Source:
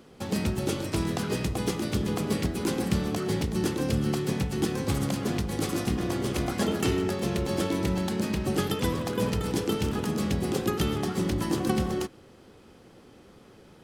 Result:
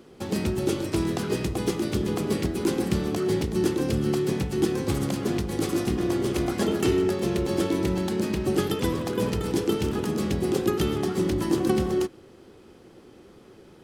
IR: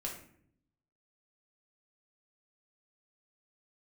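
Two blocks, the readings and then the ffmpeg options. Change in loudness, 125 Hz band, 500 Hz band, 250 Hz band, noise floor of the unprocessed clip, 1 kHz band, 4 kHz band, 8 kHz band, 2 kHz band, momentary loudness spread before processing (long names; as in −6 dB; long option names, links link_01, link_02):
+2.5 dB, 0.0 dB, +4.5 dB, +2.5 dB, −53 dBFS, 0.0 dB, 0.0 dB, 0.0 dB, 0.0 dB, 2 LU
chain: -af "equalizer=frequency=360:width=3.1:gain=7"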